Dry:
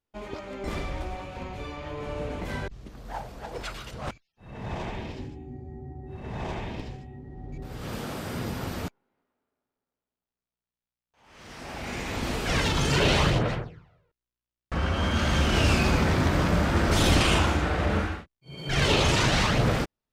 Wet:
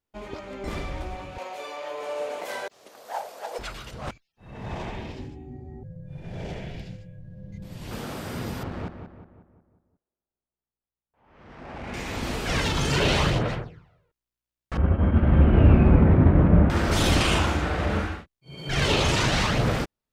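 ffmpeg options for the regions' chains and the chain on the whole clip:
ffmpeg -i in.wav -filter_complex "[0:a]asettb=1/sr,asplit=3[link_01][link_02][link_03];[link_01]atrim=end=1.384[link_04];[link_02]atrim=start=1.38:end=3.59,asetpts=PTS-STARTPTS,afade=type=in:duration=0.004:curve=qsin,afade=type=out:start_time=2.206:duration=0.004:curve=qsin,highpass=frequency=580:width_type=q:width=2,highshelf=frequency=5300:gain=11[link_05];[link_03]atrim=start=3.586[link_06];[link_04][link_05]acrossfade=duration=0.004:curve1=hsin:curve2=qsin[link_07];[link_07][link_06]acrossfade=duration=0.004:curve1=qsin:curve2=hsin,asettb=1/sr,asplit=3[link_08][link_09][link_10];[link_08]atrim=end=5.834[link_11];[link_09]atrim=start=5.83:end=7.91,asetpts=PTS-STARTPTS,afade=type=in:duration=0.004:curve=qsin,afade=type=out:start_time=2.076:duration=0.004:curve=qsin,highpass=47,equalizer=frequency=1500:width_type=o:width=0.64:gain=-9,afreqshift=-240[link_12];[link_10]atrim=start=7.906[link_13];[link_11][link_12]acrossfade=duration=0.004:curve1=hsin:curve2=qsin[link_14];[link_14][link_13]acrossfade=duration=0.004:curve1=qsin:curve2=hsin,asettb=1/sr,asplit=3[link_15][link_16][link_17];[link_15]atrim=end=8.634[link_18];[link_16]atrim=start=8.63:end=11.94,asetpts=PTS-STARTPTS,afade=type=in:duration=0.004:curve=qsin,afade=type=out:start_time=3.306:duration=0.004:curve=qsin,adynamicsmooth=sensitivity=4:basefreq=1500,asplit=2[link_19][link_20];[link_20]adelay=181,lowpass=frequency=2200:poles=1,volume=-7.5dB,asplit=2[link_21][link_22];[link_22]adelay=181,lowpass=frequency=2200:poles=1,volume=0.51,asplit=2[link_23][link_24];[link_24]adelay=181,lowpass=frequency=2200:poles=1,volume=0.51,asplit=2[link_25][link_26];[link_26]adelay=181,lowpass=frequency=2200:poles=1,volume=0.51,asplit=2[link_27][link_28];[link_28]adelay=181,lowpass=frequency=2200:poles=1,volume=0.51,asplit=2[link_29][link_30];[link_30]adelay=181,lowpass=frequency=2200:poles=1,volume=0.51[link_31];[link_19][link_21][link_23][link_25][link_27][link_29][link_31]amix=inputs=7:normalize=0,atrim=end_sample=145971[link_32];[link_17]atrim=start=11.936[link_33];[link_18][link_32]acrossfade=duration=0.004:curve1=hsin:curve2=qsin[link_34];[link_34][link_33]acrossfade=duration=0.004:curve1=qsin:curve2=hsin,asettb=1/sr,asplit=3[link_35][link_36][link_37];[link_35]atrim=end=14.774[link_38];[link_36]atrim=start=14.77:end=16.7,asetpts=PTS-STARTPTS,afade=type=in:duration=0.004:curve=qsin,afade=type=out:start_time=1.926:duration=0.004:curve=qsin,lowpass=frequency=2500:width=0.5412,lowpass=frequency=2500:width=1.3066,tiltshelf=frequency=800:gain=9,agate=range=-33dB:threshold=-16dB:ratio=3:release=100:detection=peak[link_39];[link_37]atrim=start=16.696[link_40];[link_38][link_39]acrossfade=duration=0.004:curve1=hsin:curve2=qsin[link_41];[link_41][link_40]acrossfade=duration=0.004:curve1=qsin:curve2=hsin" out.wav

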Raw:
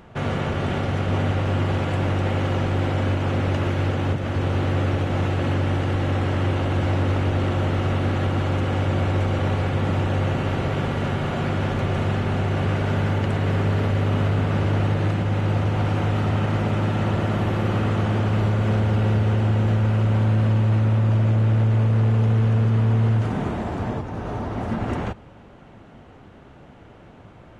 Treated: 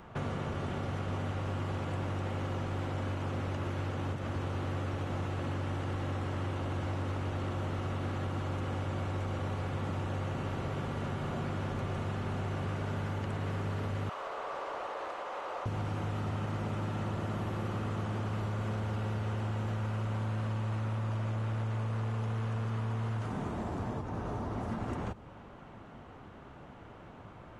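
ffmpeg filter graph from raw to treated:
ffmpeg -i in.wav -filter_complex "[0:a]asettb=1/sr,asplit=3[link_01][link_02][link_03];[link_01]atrim=end=14.094[link_04];[link_02]atrim=start=14.09:end=15.66,asetpts=PTS-STARTPTS,afade=type=in:duration=0.004:curve=qsin,afade=type=out:start_time=1.566:duration=0.004:curve=qsin,highpass=frequency=530:width=0.5412,highpass=frequency=530:width=1.3066,equalizer=frequency=1100:width_type=o:width=0.34:gain=6,asplit=2[link_05][link_06];[link_06]highpass=frequency=720:poles=1,volume=10dB,asoftclip=type=tanh:threshold=-17dB[link_07];[link_05][link_07]amix=inputs=2:normalize=0,lowpass=frequency=2600:poles=1,volume=-6dB[link_08];[link_03]atrim=start=15.656[link_09];[link_04][link_08]acrossfade=duration=0.004:curve1=hsin:curve2=qsin[link_10];[link_10][link_09]acrossfade=duration=0.004:curve1=qsin:curve2=hsin,equalizer=frequency=1100:width=1.7:gain=5.5,acrossover=split=580|4800[link_11][link_12][link_13];[link_11]acompressor=threshold=-29dB:ratio=4[link_14];[link_12]acompressor=threshold=-39dB:ratio=4[link_15];[link_13]acompressor=threshold=-55dB:ratio=4[link_16];[link_14][link_15][link_16]amix=inputs=3:normalize=0,volume=-5dB" out.wav

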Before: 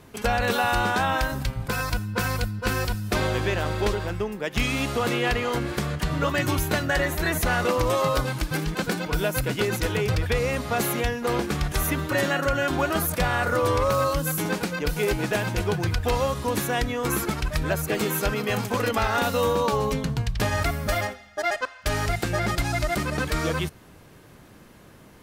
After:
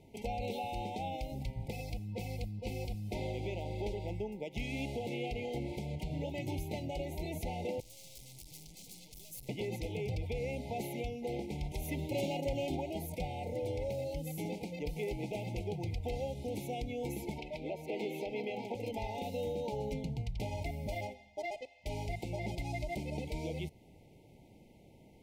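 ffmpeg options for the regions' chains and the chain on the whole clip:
ffmpeg -i in.wav -filter_complex "[0:a]asettb=1/sr,asplit=3[link_01][link_02][link_03];[link_01]atrim=end=7.804[link_04];[link_02]atrim=start=7.8:end=9.49,asetpts=PTS-STARTPTS,afade=type=in:duration=0.004:curve=qsin,afade=type=out:start_time=1.686:duration=0.004:curve=qsin,aeval=exprs='(tanh(70.8*val(0)+0.55)-tanh(0.55))/70.8':channel_layout=same,acrossover=split=190|3000[link_05][link_06][link_07];[link_06]acompressor=threshold=-54dB:ratio=5:attack=3.2:release=140:knee=2.83:detection=peak[link_08];[link_05][link_08][link_07]amix=inputs=3:normalize=0,bass=frequency=250:gain=-6,treble=frequency=4000:gain=14[link_09];[link_03]atrim=start=9.486[link_10];[link_04][link_09]acrossfade=duration=0.004:curve1=hsin:curve2=qsin[link_11];[link_11][link_10]acrossfade=duration=0.004:curve1=qsin:curve2=hsin,asettb=1/sr,asplit=3[link_12][link_13][link_14];[link_12]atrim=end=11.824[link_15];[link_13]atrim=start=11.82:end=12.75,asetpts=PTS-STARTPTS,afade=type=in:duration=0.004:curve=qsin,afade=type=out:start_time=0.926:duration=0.004:curve=qsin,highshelf=frequency=4000:gain=3.5,asoftclip=type=hard:threshold=-18.5dB[link_16];[link_14]atrim=start=12.746[link_17];[link_15][link_16]acrossfade=duration=0.004:curve1=hsin:curve2=qsin[link_18];[link_18][link_17]acrossfade=duration=0.004:curve1=qsin:curve2=hsin,asettb=1/sr,asplit=3[link_19][link_20][link_21];[link_19]atrim=end=17.384[link_22];[link_20]atrim=start=17.38:end=18.75,asetpts=PTS-STARTPTS,afade=type=in:duration=0.004:curve=qsin,afade=type=out:start_time=1.366:duration=0.004:curve=qsin,acrossover=split=220 4300:gain=0.0891 1 0.178[link_23][link_24][link_25];[link_23][link_24][link_25]amix=inputs=3:normalize=0,acontrast=33[link_26];[link_21]atrim=start=18.746[link_27];[link_22][link_26]acrossfade=duration=0.004:curve1=hsin:curve2=qsin[link_28];[link_28][link_27]acrossfade=duration=0.004:curve1=qsin:curve2=hsin,alimiter=limit=-18.5dB:level=0:latency=1:release=216,highshelf=frequency=3400:gain=-9.5,afftfilt=real='re*(1-between(b*sr/4096,930,2000))':imag='im*(1-between(b*sr/4096,930,2000))':win_size=4096:overlap=0.75,volume=-8.5dB" out.wav

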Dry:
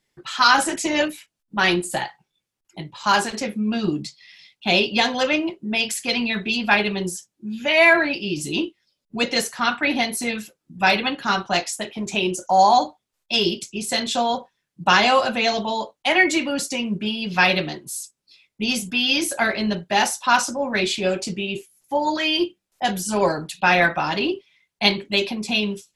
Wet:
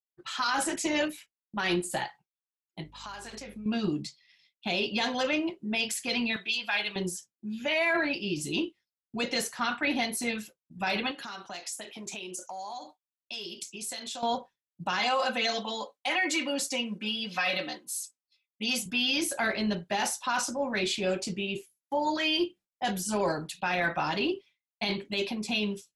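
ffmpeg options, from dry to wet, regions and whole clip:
ffmpeg -i in.wav -filter_complex "[0:a]asettb=1/sr,asplit=3[link_01][link_02][link_03];[link_01]atrim=end=2.844[link_04];[link_02]atrim=start=2.84:end=3.66,asetpts=PTS-STARTPTS,afade=type=in:duration=0.004:curve=qsin,afade=type=out:start_time=0.816:duration=0.004:curve=qsin,lowshelf=frequency=230:gain=-10.5,acompressor=threshold=-32dB:ratio=8:attack=3.2:release=140:knee=1:detection=peak,aeval=exprs='val(0)+0.00355*(sin(2*PI*50*n/s)+sin(2*PI*2*50*n/s)/2+sin(2*PI*3*50*n/s)/3+sin(2*PI*4*50*n/s)/4+sin(2*PI*5*50*n/s)/5)':channel_layout=same[link_05];[link_03]atrim=start=3.656[link_06];[link_04][link_05]acrossfade=duration=0.004:curve1=hsin:curve2=qsin[link_07];[link_07][link_06]acrossfade=duration=0.004:curve1=qsin:curve2=hsin,asettb=1/sr,asplit=3[link_08][link_09][link_10];[link_08]atrim=end=6.364[link_11];[link_09]atrim=start=6.36:end=6.96,asetpts=PTS-STARTPTS,afade=type=in:duration=0.004:curve=qsin,afade=type=out:start_time=0.596:duration=0.004:curve=qsin,highpass=frequency=1400:poles=1,equalizer=frequency=3300:width=5.1:gain=4.5,aecho=1:1:6.1:0.35,atrim=end_sample=26460[link_12];[link_10]atrim=start=6.956[link_13];[link_11][link_12]acrossfade=duration=0.004:curve1=hsin:curve2=qsin[link_14];[link_14][link_13]acrossfade=duration=0.004:curve1=qsin:curve2=hsin,asettb=1/sr,asplit=3[link_15][link_16][link_17];[link_15]atrim=end=11.114[link_18];[link_16]atrim=start=11.11:end=14.23,asetpts=PTS-STARTPTS,afade=type=in:duration=0.004:curve=qsin,afade=type=out:start_time=3.116:duration=0.004:curve=qsin,highpass=frequency=310:poles=1,acompressor=threshold=-32dB:ratio=6:attack=3.2:release=140:knee=1:detection=peak,highshelf=frequency=4200:gain=7[link_19];[link_17]atrim=start=14.226[link_20];[link_18][link_19]acrossfade=duration=0.004:curve1=hsin:curve2=qsin[link_21];[link_21][link_20]acrossfade=duration=0.004:curve1=qsin:curve2=hsin,asettb=1/sr,asplit=3[link_22][link_23][link_24];[link_22]atrim=end=14.994[link_25];[link_23]atrim=start=14.99:end=18.86,asetpts=PTS-STARTPTS,afade=type=in:duration=0.004:curve=qsin,afade=type=out:start_time=3.866:duration=0.004:curve=qsin,highpass=frequency=510:poles=1,aecho=1:1:3.9:0.75,atrim=end_sample=170667[link_26];[link_24]atrim=start=18.856[link_27];[link_25][link_26]acrossfade=duration=0.004:curve1=hsin:curve2=qsin[link_28];[link_28][link_27]acrossfade=duration=0.004:curve1=qsin:curve2=hsin,agate=range=-33dB:threshold=-39dB:ratio=3:detection=peak,alimiter=limit=-13dB:level=0:latency=1:release=17,volume=-6dB" out.wav

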